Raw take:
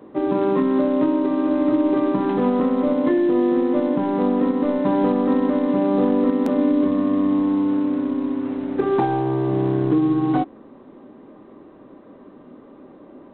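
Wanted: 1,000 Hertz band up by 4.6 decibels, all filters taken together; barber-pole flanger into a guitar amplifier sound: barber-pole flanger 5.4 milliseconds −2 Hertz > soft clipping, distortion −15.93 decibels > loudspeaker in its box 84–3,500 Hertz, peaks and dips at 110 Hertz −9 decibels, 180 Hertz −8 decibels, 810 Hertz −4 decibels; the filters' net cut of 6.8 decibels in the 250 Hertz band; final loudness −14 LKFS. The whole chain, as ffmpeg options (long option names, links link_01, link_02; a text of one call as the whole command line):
ffmpeg -i in.wav -filter_complex "[0:a]equalizer=frequency=250:width_type=o:gain=-8,equalizer=frequency=1000:width_type=o:gain=8.5,asplit=2[link_01][link_02];[link_02]adelay=5.4,afreqshift=-2[link_03];[link_01][link_03]amix=inputs=2:normalize=1,asoftclip=threshold=-19dB,highpass=84,equalizer=frequency=110:width_type=q:width=4:gain=-9,equalizer=frequency=180:width_type=q:width=4:gain=-8,equalizer=frequency=810:width_type=q:width=4:gain=-4,lowpass=frequency=3500:width=0.5412,lowpass=frequency=3500:width=1.3066,volume=14dB" out.wav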